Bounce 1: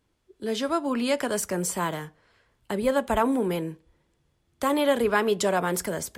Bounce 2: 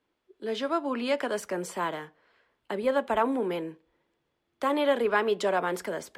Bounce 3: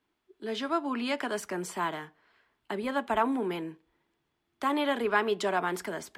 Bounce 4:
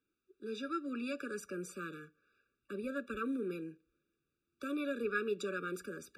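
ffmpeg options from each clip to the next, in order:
ffmpeg -i in.wav -filter_complex "[0:a]acrossover=split=230 4300:gain=0.158 1 0.224[link_01][link_02][link_03];[link_01][link_02][link_03]amix=inputs=3:normalize=0,volume=-1.5dB" out.wav
ffmpeg -i in.wav -af "equalizer=frequency=520:width_type=o:width=0.29:gain=-12" out.wav
ffmpeg -i in.wav -af "afftfilt=real='re*eq(mod(floor(b*sr/1024/570),2),0)':imag='im*eq(mod(floor(b*sr/1024/570),2),0)':win_size=1024:overlap=0.75,volume=-6.5dB" out.wav

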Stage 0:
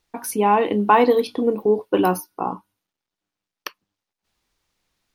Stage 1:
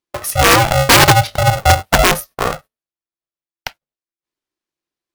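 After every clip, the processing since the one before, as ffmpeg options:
ffmpeg -i in.wav -af "agate=range=-22dB:threshold=-41dB:ratio=16:detection=peak,aeval=exprs='(mod(2.66*val(0)+1,2)-1)/2.66':channel_layout=same,aeval=exprs='val(0)*sgn(sin(2*PI*340*n/s))':channel_layout=same,volume=7dB" out.wav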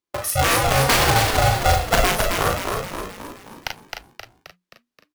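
ffmpeg -i in.wav -filter_complex "[0:a]asplit=2[link_01][link_02];[link_02]aecho=0:1:37|47:0.596|0.266[link_03];[link_01][link_03]amix=inputs=2:normalize=0,acompressor=threshold=-12dB:ratio=6,asplit=2[link_04][link_05];[link_05]asplit=7[link_06][link_07][link_08][link_09][link_10][link_11][link_12];[link_06]adelay=264,afreqshift=-60,volume=-4dB[link_13];[link_07]adelay=528,afreqshift=-120,volume=-9.5dB[link_14];[link_08]adelay=792,afreqshift=-180,volume=-15dB[link_15];[link_09]adelay=1056,afreqshift=-240,volume=-20.5dB[link_16];[link_10]adelay=1320,afreqshift=-300,volume=-26.1dB[link_17];[link_11]adelay=1584,afreqshift=-360,volume=-31.6dB[link_18];[link_12]adelay=1848,afreqshift=-420,volume=-37.1dB[link_19];[link_13][link_14][link_15][link_16][link_17][link_18][link_19]amix=inputs=7:normalize=0[link_20];[link_04][link_20]amix=inputs=2:normalize=0,volume=-3.5dB" out.wav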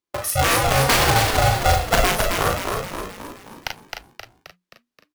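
ffmpeg -i in.wav -af anull out.wav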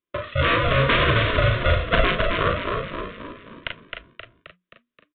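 ffmpeg -i in.wav -af "asuperstop=centerf=810:order=8:qfactor=2.9,aresample=8000,aresample=44100" out.wav

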